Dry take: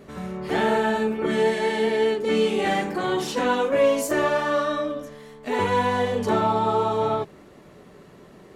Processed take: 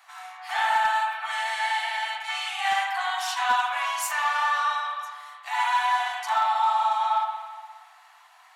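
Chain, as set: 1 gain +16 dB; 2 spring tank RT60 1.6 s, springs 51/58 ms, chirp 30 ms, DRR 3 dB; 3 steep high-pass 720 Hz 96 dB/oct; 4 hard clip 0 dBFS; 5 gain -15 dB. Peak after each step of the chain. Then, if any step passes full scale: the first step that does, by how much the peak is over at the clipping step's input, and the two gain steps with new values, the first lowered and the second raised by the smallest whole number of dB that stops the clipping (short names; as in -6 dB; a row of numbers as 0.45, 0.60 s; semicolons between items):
+7.0, +8.5, +4.5, 0.0, -15.0 dBFS; step 1, 4.5 dB; step 1 +11 dB, step 5 -10 dB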